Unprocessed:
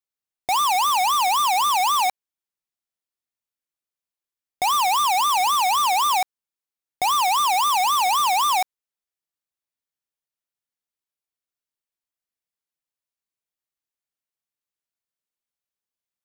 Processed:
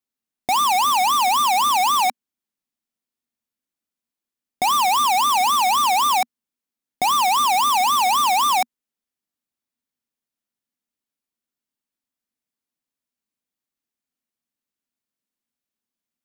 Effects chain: bell 240 Hz +14.5 dB 0.65 oct; gain +1.5 dB

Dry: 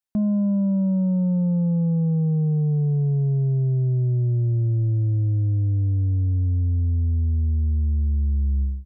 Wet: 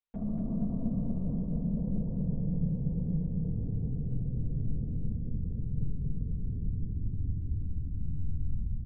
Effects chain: limiter -28.5 dBFS, peak gain reduction 10 dB; LPC vocoder at 8 kHz whisper; feedback echo 0.236 s, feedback 52%, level -4.5 dB; reverb RT60 0.80 s, pre-delay 4 ms, DRR 4.5 dB; gain -5.5 dB

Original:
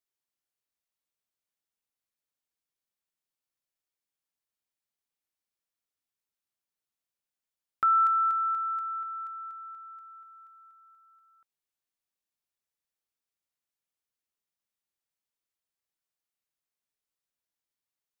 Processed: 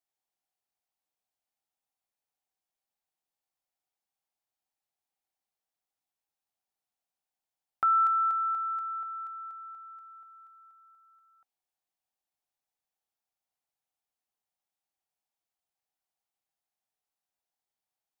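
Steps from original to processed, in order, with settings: bell 770 Hz +13.5 dB 0.46 oct; gain -2.5 dB

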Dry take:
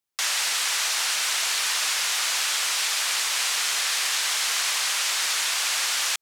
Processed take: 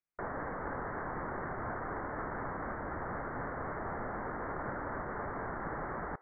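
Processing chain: vibrato 4 Hz 77 cents; inverted band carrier 2500 Hz; on a send: HPF 440 Hz 24 dB/oct + reverb RT60 0.65 s, pre-delay 5 ms, DRR 18.5 dB; on the sum: gain -7 dB

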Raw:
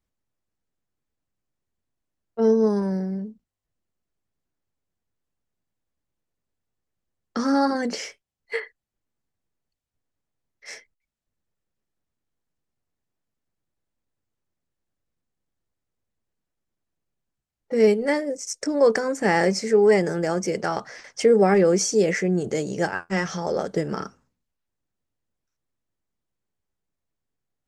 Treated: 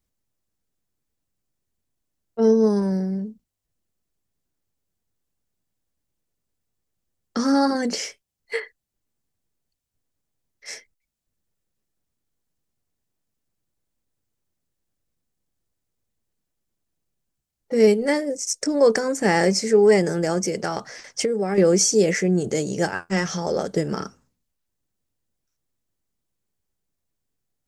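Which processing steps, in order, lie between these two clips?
tilt shelf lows +3 dB, about 700 Hz; 20.45–21.58 compressor 6:1, threshold -21 dBFS, peak gain reduction 9.5 dB; high shelf 3300 Hz +11 dB

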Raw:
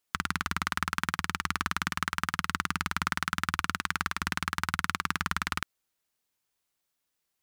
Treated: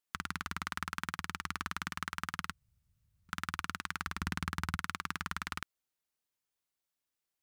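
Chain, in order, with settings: 2.53–3.29 room tone; 4.07–4.77 low shelf 350 Hz +9.5 dB; gain -8 dB

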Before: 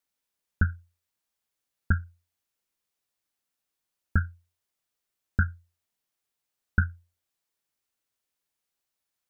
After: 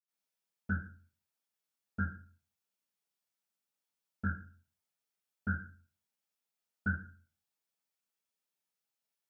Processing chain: HPF 150 Hz 12 dB/oct; reverb RT60 0.40 s, pre-delay 79 ms, DRR -60 dB; gain +7 dB

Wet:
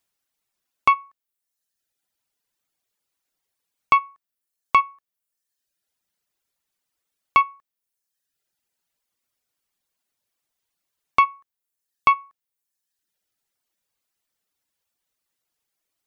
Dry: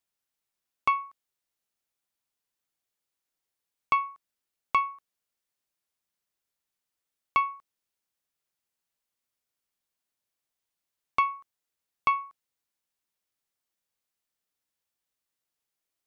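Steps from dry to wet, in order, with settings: reverb removal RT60 1 s; gain +8 dB

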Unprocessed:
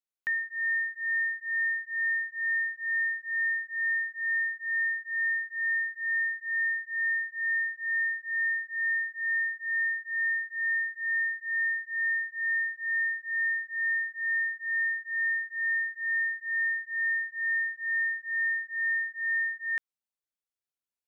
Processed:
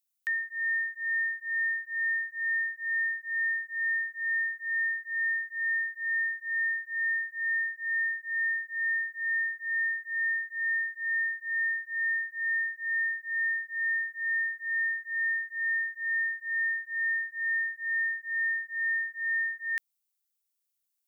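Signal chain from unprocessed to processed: tilt +5 dB/oct; gain -5 dB

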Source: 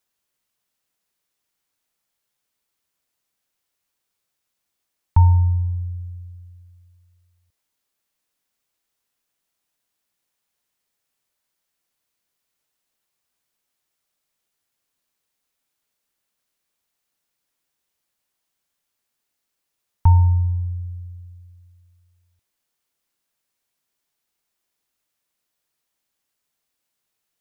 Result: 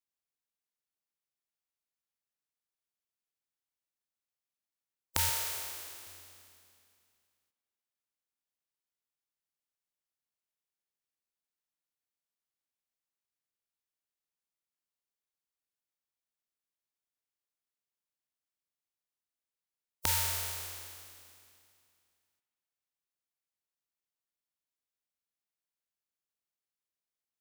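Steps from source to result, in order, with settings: spectral contrast lowered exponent 0.17; 5.29–6.07 Chebyshev high-pass 190 Hz, order 2; spring tank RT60 2.5 s, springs 39 ms, chirp 30 ms, DRR 17.5 dB; gain -17 dB

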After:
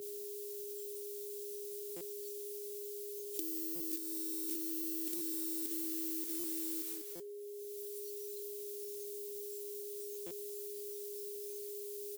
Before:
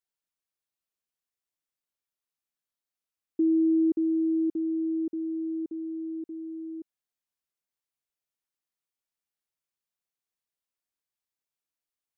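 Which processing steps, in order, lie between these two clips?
block floating point 5-bit; added noise white -65 dBFS; expander -51 dBFS; differentiator; echo 0.196 s -10.5 dB; negative-ratio compressor -55 dBFS, ratio -1; spectral noise reduction 14 dB; whine 410 Hz -71 dBFS; stuck buffer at 1.96/3.75/5.16/6.39/7.15/10.26, samples 256, times 7; three-band squash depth 100%; gain +16.5 dB

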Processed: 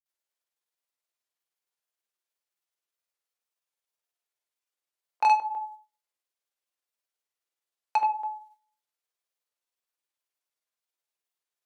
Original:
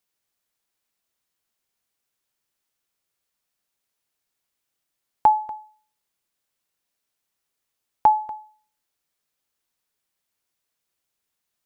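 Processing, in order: HPF 380 Hz 24 dB/oct; gate -54 dBFS, range -8 dB; grains 0.1 s, grains 19/s, spray 0.1 s, pitch spread up and down by 0 st; soft clip -19.5 dBFS, distortion -7 dB; shoebox room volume 210 m³, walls furnished, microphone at 0.84 m

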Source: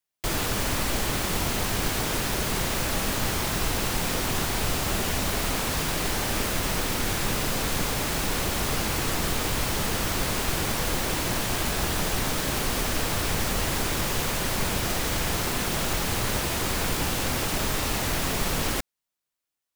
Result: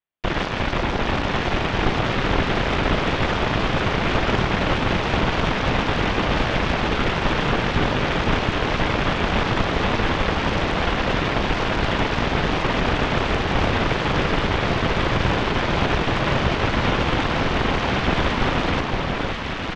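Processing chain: air absorption 180 m; downsampling 8000 Hz; added harmonics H 6 -6 dB, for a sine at -14 dBFS; echo with dull and thin repeats by turns 0.521 s, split 1300 Hz, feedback 78%, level -2 dB

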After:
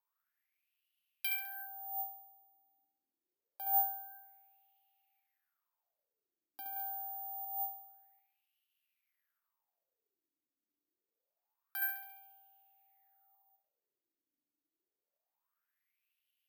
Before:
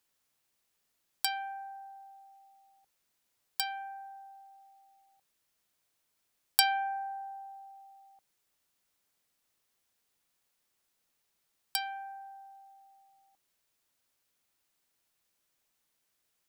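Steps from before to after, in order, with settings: flutter echo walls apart 11.8 m, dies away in 0.75 s; wah 0.26 Hz 280–2900 Hz, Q 7.5; 6.76–7.45 graphic EQ 250/500/2000/4000/8000 Hz -7/+8/+7/+8/+9 dB; careless resampling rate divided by 3×, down filtered, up zero stuff; gain +3.5 dB

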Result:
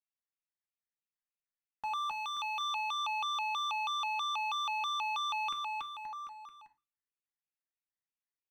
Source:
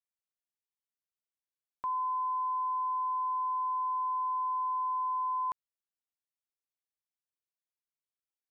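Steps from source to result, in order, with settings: EQ curve 320 Hz 0 dB, 490 Hz -15 dB, 700 Hz -8 dB, 1100 Hz +1 dB, 1600 Hz +1 dB, 2300 Hz +11 dB, 3300 Hz -21 dB; sample leveller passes 2; in parallel at -10 dB: bit-crush 8-bit; on the sum: bouncing-ball echo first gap 0.28 s, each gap 0.9×, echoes 5; reverb RT60 0.35 s, pre-delay 4 ms, DRR 5 dB; shaped vibrato square 3.1 Hz, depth 250 cents; gain -7 dB

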